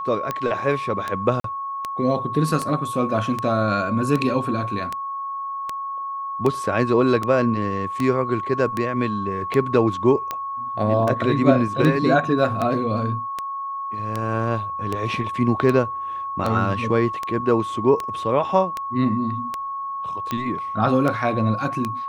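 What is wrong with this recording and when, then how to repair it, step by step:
tick 78 rpm -11 dBFS
whine 1.1 kHz -26 dBFS
1.40–1.44 s: dropout 43 ms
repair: de-click; band-stop 1.1 kHz, Q 30; interpolate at 1.40 s, 43 ms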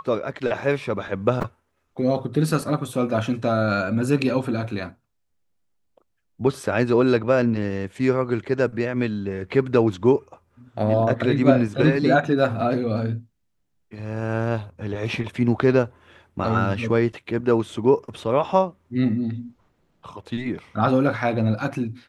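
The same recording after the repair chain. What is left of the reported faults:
nothing left

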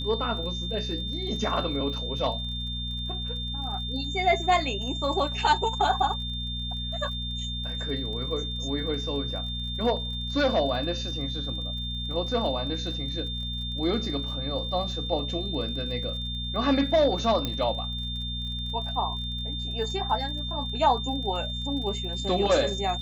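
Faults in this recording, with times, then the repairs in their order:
crackle 39 per s -38 dBFS
hum 60 Hz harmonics 4 -34 dBFS
whine 3.6 kHz -33 dBFS
17.45 s: pop -14 dBFS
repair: de-click; de-hum 60 Hz, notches 4; band-stop 3.6 kHz, Q 30

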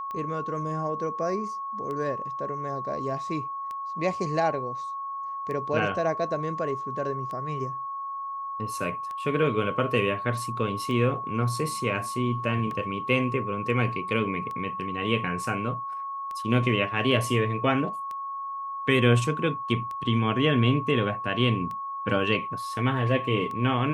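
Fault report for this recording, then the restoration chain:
tick 33 1/3 rpm -24 dBFS
whine 1.1 kHz -31 dBFS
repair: de-click; band-stop 1.1 kHz, Q 30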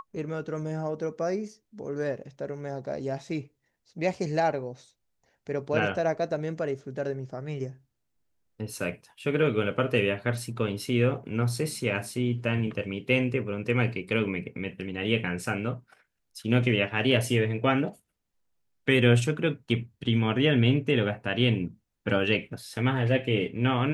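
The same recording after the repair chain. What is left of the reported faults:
nothing left

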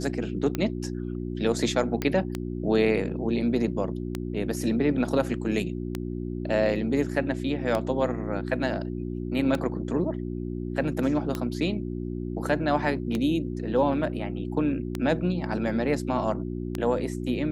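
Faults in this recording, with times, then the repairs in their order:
hum 60 Hz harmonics 6 -32 dBFS
tick 33 1/3 rpm -14 dBFS
2.02 s: pop -13 dBFS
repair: de-click; de-hum 60 Hz, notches 6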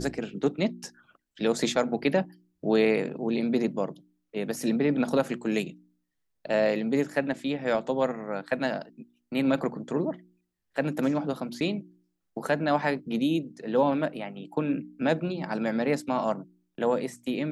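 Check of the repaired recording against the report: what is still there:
nothing left

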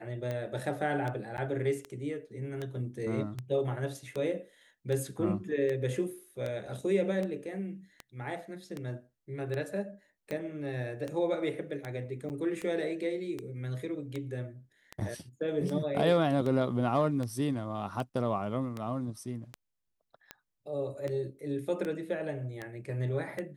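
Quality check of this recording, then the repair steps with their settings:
tick 78 rpm -23 dBFS
1.37–1.38 s: dropout 9.8 ms
12.29–12.30 s: dropout 9 ms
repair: de-click; interpolate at 1.37 s, 9.8 ms; interpolate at 12.29 s, 9 ms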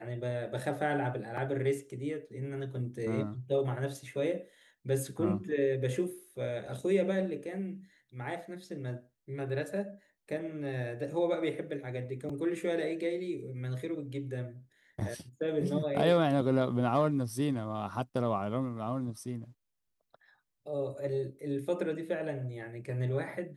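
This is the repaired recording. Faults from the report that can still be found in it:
nothing left

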